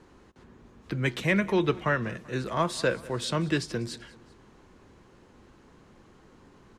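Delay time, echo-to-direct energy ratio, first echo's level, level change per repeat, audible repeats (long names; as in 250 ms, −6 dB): 193 ms, −20.0 dB, −21.0 dB, −5.0 dB, 2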